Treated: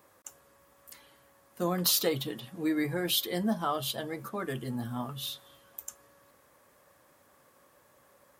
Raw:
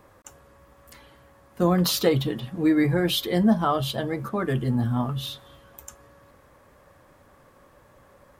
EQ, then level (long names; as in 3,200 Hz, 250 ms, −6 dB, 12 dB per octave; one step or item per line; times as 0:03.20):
high-pass filter 220 Hz 6 dB per octave
high-shelf EQ 3,500 Hz +6.5 dB
high-shelf EQ 7,400 Hz +5.5 dB
−7.5 dB